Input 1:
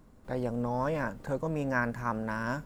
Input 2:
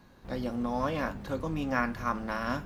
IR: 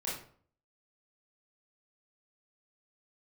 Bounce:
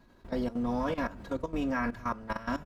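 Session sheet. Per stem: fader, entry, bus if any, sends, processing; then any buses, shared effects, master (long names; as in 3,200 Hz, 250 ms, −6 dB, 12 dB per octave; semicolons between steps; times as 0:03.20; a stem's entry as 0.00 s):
−3.0 dB, 0.00 s, send −16 dB, hum removal 143.6 Hz, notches 27
0.0 dB, 0.8 ms, no send, comb filter 3.1 ms, depth 50%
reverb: on, RT60 0.50 s, pre-delay 22 ms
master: high-shelf EQ 8,300 Hz −5.5 dB; output level in coarse steps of 15 dB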